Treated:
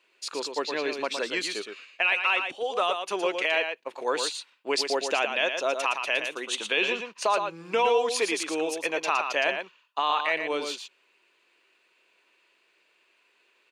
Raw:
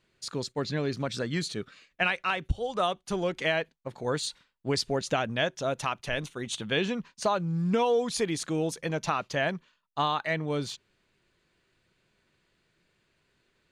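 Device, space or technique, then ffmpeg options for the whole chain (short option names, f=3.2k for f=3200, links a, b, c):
laptop speaker: -af "highpass=f=340:w=0.5412,highpass=f=340:w=1.3066,equalizer=f=1k:t=o:w=0.42:g=5.5,equalizer=f=2.6k:t=o:w=0.41:g=11,alimiter=limit=-16dB:level=0:latency=1:release=20,aecho=1:1:115:0.473,volume=2dB"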